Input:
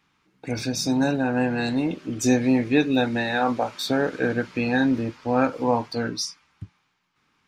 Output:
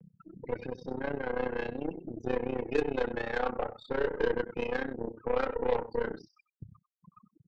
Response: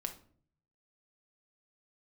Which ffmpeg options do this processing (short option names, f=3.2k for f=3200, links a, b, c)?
-filter_complex "[0:a]aeval=exprs='val(0)+0.5*0.0299*sgn(val(0))':c=same,afftfilt=real='re*gte(hypot(re,im),0.0708)':imag='im*gte(hypot(re,im),0.0708)':win_size=1024:overlap=0.75,adynamicequalizer=threshold=0.01:dfrequency=440:dqfactor=7.9:tfrequency=440:tqfactor=7.9:attack=5:release=100:ratio=0.375:range=2:mode=cutabove:tftype=bell,asplit=2[a][b];[b]asoftclip=type=hard:threshold=-16dB,volume=-9dB[c];[a][c]amix=inputs=2:normalize=0,acompressor=mode=upward:threshold=-38dB:ratio=2.5,aecho=1:1:91:0.211,acrossover=split=290[d][e];[d]acompressor=threshold=-31dB:ratio=10[f];[f][e]amix=inputs=2:normalize=0,highpass=110,equalizer=f=260:t=q:w=4:g=-8,equalizer=f=460:t=q:w=4:g=9,equalizer=f=650:t=q:w=4:g=-9,equalizer=f=1k:t=q:w=4:g=-6,equalizer=f=1.8k:t=q:w=4:g=-4,lowpass=f=2.4k:w=0.5412,lowpass=f=2.4k:w=1.3066,aeval=exprs='0.422*(cos(1*acos(clip(val(0)/0.422,-1,1)))-cos(1*PI/2))+0.0106*(cos(4*acos(clip(val(0)/0.422,-1,1)))-cos(4*PI/2))+0.0335*(cos(8*acos(clip(val(0)/0.422,-1,1)))-cos(8*PI/2))':c=same,tremolo=f=31:d=0.857,volume=-6.5dB"